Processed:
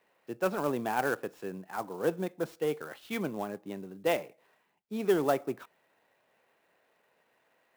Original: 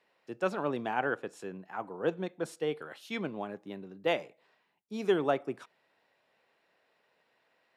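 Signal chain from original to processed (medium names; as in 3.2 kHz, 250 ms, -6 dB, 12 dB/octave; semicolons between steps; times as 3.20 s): low-pass 3.1 kHz 6 dB/octave; in parallel at -9 dB: hard clipper -30.5 dBFS, distortion -7 dB; on the sum: sampling jitter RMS 0.024 ms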